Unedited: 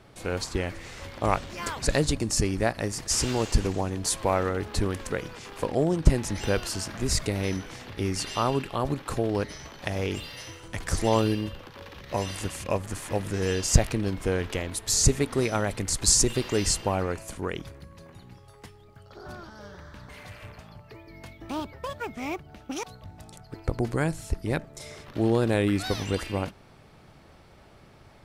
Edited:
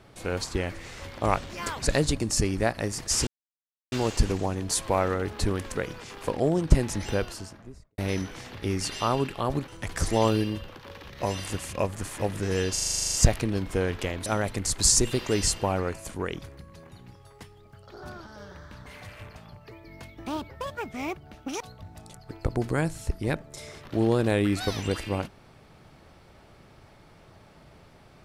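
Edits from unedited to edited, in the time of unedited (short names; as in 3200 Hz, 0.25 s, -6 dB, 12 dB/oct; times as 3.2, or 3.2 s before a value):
3.27 insert silence 0.65 s
6.26–7.33 studio fade out
9.03–10.59 cut
13.64 stutter 0.04 s, 11 plays
14.77–15.49 cut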